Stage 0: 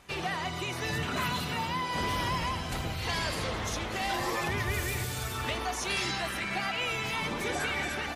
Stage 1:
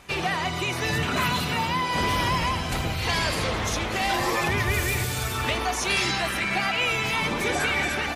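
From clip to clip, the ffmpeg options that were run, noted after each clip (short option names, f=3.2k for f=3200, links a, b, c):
-af "equalizer=f=2.4k:w=7.8:g=3,volume=6.5dB"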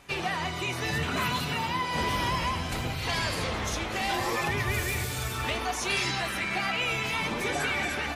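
-af "flanger=delay=7.1:depth=8.4:regen=63:speed=0.66:shape=sinusoidal"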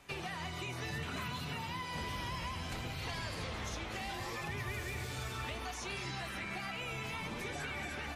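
-filter_complex "[0:a]acrossover=split=170|1600|7100[a][b][c][d];[a]acompressor=threshold=-36dB:ratio=4[e];[b]acompressor=threshold=-38dB:ratio=4[f];[c]acompressor=threshold=-39dB:ratio=4[g];[d]acompressor=threshold=-54dB:ratio=4[h];[e][f][g][h]amix=inputs=4:normalize=0,volume=-5.5dB"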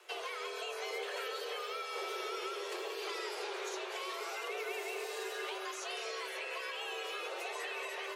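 -af "afreqshift=320"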